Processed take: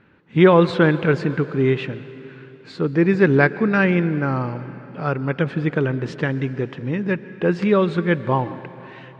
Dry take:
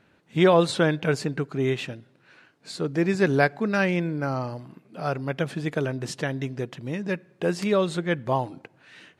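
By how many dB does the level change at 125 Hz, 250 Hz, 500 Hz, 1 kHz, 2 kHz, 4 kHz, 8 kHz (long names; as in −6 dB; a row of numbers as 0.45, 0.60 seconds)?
+7.0 dB, +7.0 dB, +5.0 dB, +4.0 dB, +5.5 dB, −1.0 dB, below −10 dB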